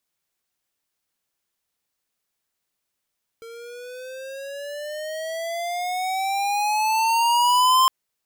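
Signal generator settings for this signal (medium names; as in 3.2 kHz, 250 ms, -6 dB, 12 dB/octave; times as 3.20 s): gliding synth tone square, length 4.46 s, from 455 Hz, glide +14.5 st, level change +24 dB, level -15.5 dB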